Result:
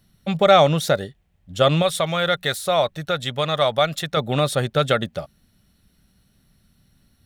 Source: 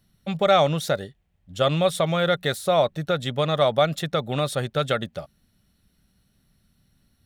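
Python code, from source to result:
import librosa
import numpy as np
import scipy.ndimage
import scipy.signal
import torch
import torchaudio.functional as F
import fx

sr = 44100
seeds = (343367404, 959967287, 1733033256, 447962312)

y = fx.peak_eq(x, sr, hz=250.0, db=-7.5, octaves=3.0, at=(1.82, 4.17))
y = F.gain(torch.from_numpy(y), 4.5).numpy()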